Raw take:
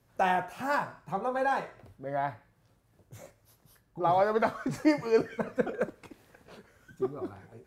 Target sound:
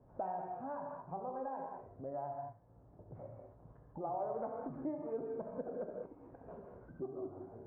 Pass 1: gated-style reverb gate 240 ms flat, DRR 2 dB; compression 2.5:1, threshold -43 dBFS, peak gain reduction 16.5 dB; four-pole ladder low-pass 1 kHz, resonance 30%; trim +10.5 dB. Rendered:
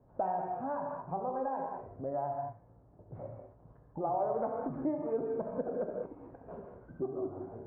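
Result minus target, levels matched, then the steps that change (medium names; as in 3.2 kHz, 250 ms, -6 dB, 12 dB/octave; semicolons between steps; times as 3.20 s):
compression: peak gain reduction -6.5 dB
change: compression 2.5:1, threshold -54 dBFS, peak gain reduction 23.5 dB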